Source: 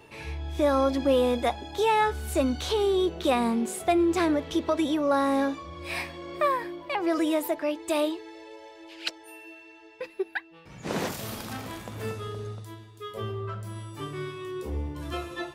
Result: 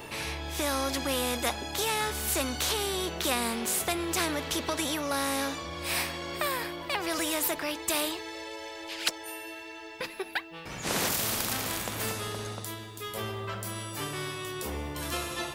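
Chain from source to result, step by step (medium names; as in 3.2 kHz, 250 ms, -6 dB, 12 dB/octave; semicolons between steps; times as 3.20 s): treble shelf 9.9 kHz +8.5 dB; spectrum-flattening compressor 2:1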